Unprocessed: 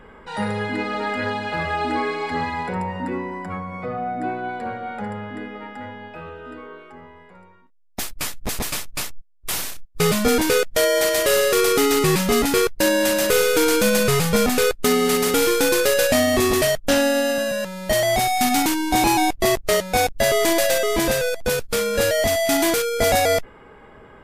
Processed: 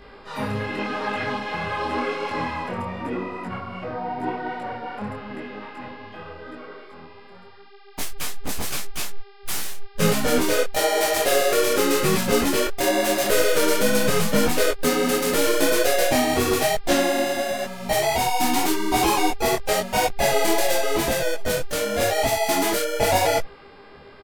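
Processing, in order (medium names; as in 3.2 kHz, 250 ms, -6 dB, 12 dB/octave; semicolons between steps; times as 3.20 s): harmony voices -7 st -14 dB, +4 st -5 dB, +5 st -16 dB; mains buzz 400 Hz, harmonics 13, -47 dBFS -5 dB/octave; detune thickener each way 31 cents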